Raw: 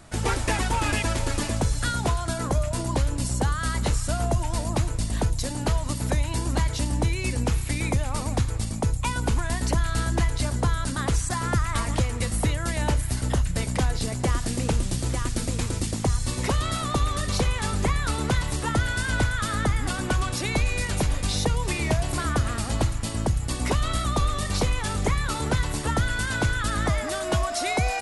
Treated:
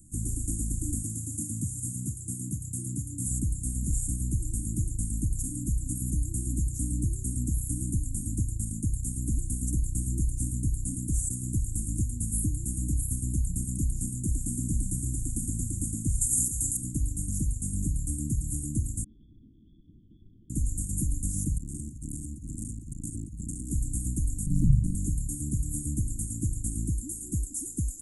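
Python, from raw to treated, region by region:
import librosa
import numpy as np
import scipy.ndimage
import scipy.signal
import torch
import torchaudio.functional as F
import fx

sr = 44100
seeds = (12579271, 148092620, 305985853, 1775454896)

y = fx.chain(x, sr, fx.highpass(hz=94.0, slope=24),
    fx.peak_eq(hz=330.0, db=-4.0, octaves=0.84), at=(1.03, 3.26))
y = fx.chain(y, sr, fx.bass_treble(bass_db=-3, treble_db=13),
    fx.over_compress(threshold_db=-25.0, ratio=-0.5), at=(16.21, 16.77))
y = fx.chain(y, sr, fx.delta_mod(bps=32000, step_db=-37.0),
    fx.freq_invert(carrier_hz=3400), at=(19.04, 20.5))
y = fx.chain(y, sr, fx.lowpass(hz=9200.0, slope=12),
    fx.over_compress(threshold_db=-27.0, ratio=-0.5),
    fx.transformer_sat(knee_hz=430.0), at=(21.58, 23.7))
y = fx.chain(y, sr, fx.tilt_eq(slope=-2.5),
    fx.ring_mod(carrier_hz=86.0), at=(24.46, 24.95))
y = scipy.signal.sosfilt(scipy.signal.cheby1(5, 1.0, [310.0, 7000.0], 'bandstop', fs=sr, output='sos'), y)
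y = fx.high_shelf(y, sr, hz=6500.0, db=8.5)
y = F.gain(torch.from_numpy(y), -3.5).numpy()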